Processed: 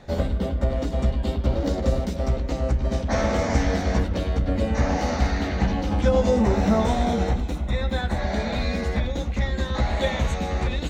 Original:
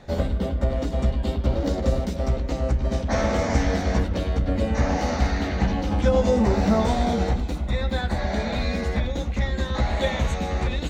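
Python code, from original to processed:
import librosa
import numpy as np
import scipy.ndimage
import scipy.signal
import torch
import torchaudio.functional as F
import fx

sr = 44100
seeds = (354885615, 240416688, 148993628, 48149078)

y = fx.notch(x, sr, hz=4600.0, q=7.7, at=(6.41, 8.23))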